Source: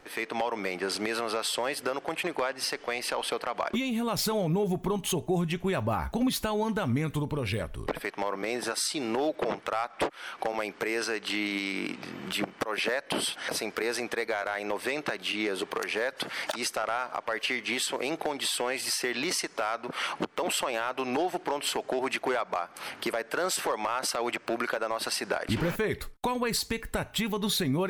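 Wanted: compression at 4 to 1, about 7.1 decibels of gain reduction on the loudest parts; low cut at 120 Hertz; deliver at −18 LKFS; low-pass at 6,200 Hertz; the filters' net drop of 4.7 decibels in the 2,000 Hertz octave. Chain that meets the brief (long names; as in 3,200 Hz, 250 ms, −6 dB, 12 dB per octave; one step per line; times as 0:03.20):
high-pass filter 120 Hz
low-pass filter 6,200 Hz
parametric band 2,000 Hz −6 dB
downward compressor 4 to 1, threshold −33 dBFS
level +19 dB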